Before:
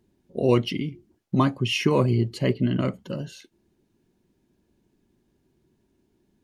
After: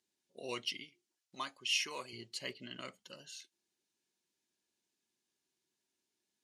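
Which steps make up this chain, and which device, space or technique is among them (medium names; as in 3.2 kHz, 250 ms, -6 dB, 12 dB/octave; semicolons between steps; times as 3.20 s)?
piezo pickup straight into a mixer (low-pass 7.3 kHz 12 dB/octave; differentiator); 0.84–2.13 s: bass shelf 310 Hz -11 dB; trim +1.5 dB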